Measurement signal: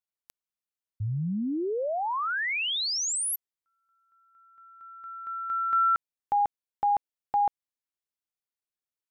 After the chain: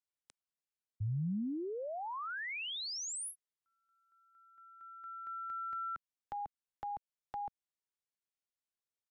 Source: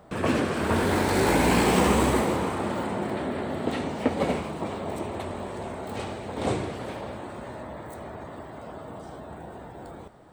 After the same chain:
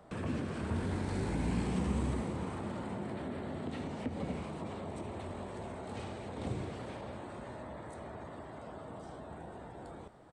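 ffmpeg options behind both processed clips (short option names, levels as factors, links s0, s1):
-filter_complex "[0:a]aresample=22050,aresample=44100,acrossover=split=220[s0][s1];[s1]acompressor=threshold=0.02:ratio=5:attack=2.3:release=121:knee=6:detection=rms[s2];[s0][s2]amix=inputs=2:normalize=0,volume=0.531"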